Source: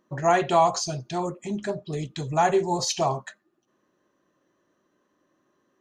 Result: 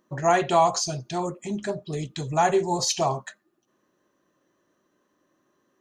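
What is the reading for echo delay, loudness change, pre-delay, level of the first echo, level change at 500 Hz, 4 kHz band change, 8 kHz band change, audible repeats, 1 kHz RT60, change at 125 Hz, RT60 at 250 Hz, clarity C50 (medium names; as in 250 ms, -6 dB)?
no echo, +0.5 dB, no reverb, no echo, 0.0 dB, +1.5 dB, +2.5 dB, no echo, no reverb, 0.0 dB, no reverb, no reverb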